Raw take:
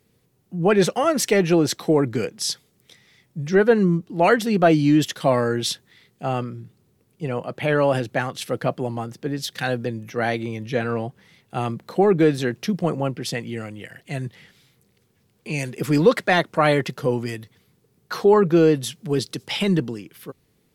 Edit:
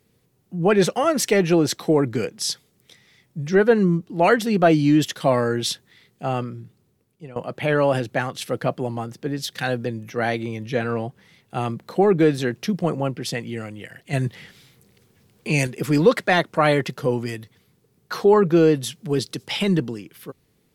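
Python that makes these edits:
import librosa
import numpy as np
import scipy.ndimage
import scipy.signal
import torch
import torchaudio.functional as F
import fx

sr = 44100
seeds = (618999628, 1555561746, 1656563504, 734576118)

y = fx.edit(x, sr, fx.fade_out_to(start_s=6.41, length_s=0.95, curve='qsin', floor_db=-17.5),
    fx.clip_gain(start_s=14.13, length_s=1.54, db=6.0), tone=tone)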